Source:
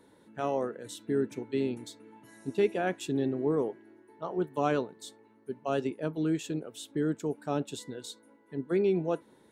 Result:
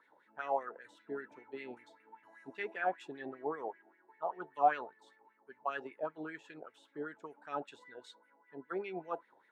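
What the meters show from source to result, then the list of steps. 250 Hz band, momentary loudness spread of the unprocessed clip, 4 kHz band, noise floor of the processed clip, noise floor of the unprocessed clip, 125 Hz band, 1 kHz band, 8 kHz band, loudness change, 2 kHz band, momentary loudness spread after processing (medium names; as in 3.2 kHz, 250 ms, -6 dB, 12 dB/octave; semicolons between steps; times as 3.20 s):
-17.0 dB, 15 LU, -13.0 dB, -71 dBFS, -62 dBFS, -23.5 dB, +1.5 dB, under -20 dB, -7.5 dB, -1.0 dB, 18 LU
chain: wah-wah 5.1 Hz 700–2100 Hz, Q 5.4; trim +7.5 dB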